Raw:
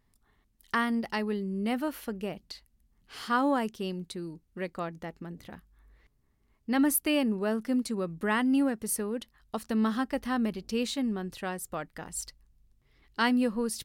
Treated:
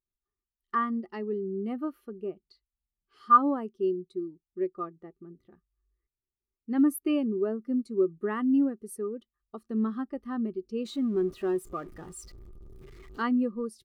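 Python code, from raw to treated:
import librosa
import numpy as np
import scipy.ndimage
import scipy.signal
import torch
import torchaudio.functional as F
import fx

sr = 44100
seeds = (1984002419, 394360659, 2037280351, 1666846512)

y = fx.zero_step(x, sr, step_db=-32.0, at=(10.85, 13.22))
y = fx.small_body(y, sr, hz=(370.0, 1200.0), ring_ms=55, db=13)
y = fx.spectral_expand(y, sr, expansion=1.5)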